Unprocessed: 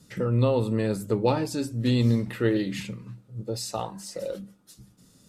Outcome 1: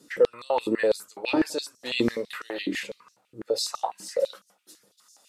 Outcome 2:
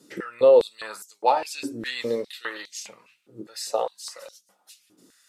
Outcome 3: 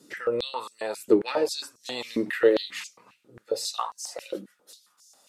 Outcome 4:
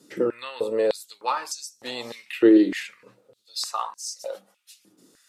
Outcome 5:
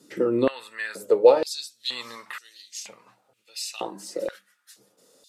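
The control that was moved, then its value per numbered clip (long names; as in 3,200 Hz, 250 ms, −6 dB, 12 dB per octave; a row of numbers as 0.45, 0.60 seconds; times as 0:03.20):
high-pass on a step sequencer, speed: 12, 4.9, 7.4, 3.3, 2.1 Hertz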